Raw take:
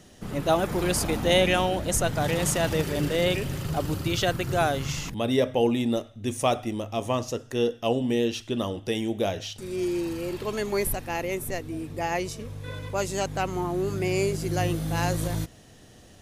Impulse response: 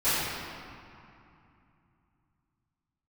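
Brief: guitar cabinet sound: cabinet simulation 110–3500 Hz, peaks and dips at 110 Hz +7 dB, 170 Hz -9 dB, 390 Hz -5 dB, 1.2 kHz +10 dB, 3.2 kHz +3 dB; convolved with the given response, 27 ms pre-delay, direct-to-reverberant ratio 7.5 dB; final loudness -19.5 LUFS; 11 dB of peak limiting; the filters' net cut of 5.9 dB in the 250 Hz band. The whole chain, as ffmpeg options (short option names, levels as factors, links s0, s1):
-filter_complex "[0:a]equalizer=f=250:t=o:g=-4.5,alimiter=limit=0.0891:level=0:latency=1,asplit=2[s0][s1];[1:a]atrim=start_sample=2205,adelay=27[s2];[s1][s2]afir=irnorm=-1:irlink=0,volume=0.075[s3];[s0][s3]amix=inputs=2:normalize=0,highpass=110,equalizer=f=110:t=q:w=4:g=7,equalizer=f=170:t=q:w=4:g=-9,equalizer=f=390:t=q:w=4:g=-5,equalizer=f=1200:t=q:w=4:g=10,equalizer=f=3200:t=q:w=4:g=3,lowpass=f=3500:w=0.5412,lowpass=f=3500:w=1.3066,volume=3.98"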